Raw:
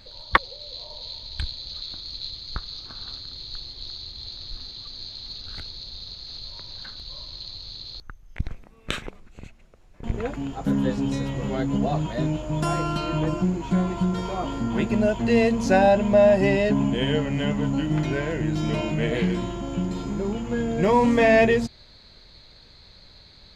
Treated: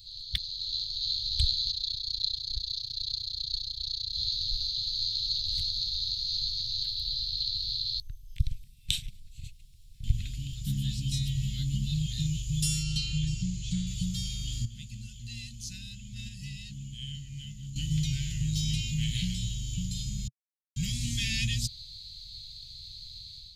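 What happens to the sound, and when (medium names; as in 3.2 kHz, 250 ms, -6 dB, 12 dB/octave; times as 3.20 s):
1.71–4.13 s: AM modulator 30 Hz, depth 85%
6.83–12.07 s: peaking EQ 6.5 kHz -7 dB 0.29 oct
12.83–13.87 s: low-pass 7.9 kHz
14.65–17.76 s: gate -14 dBFS, range -12 dB
20.28–20.76 s: mute
whole clip: elliptic band-stop 130–3400 Hz, stop band 70 dB; treble shelf 4.5 kHz +10.5 dB; level rider gain up to 7 dB; trim -4.5 dB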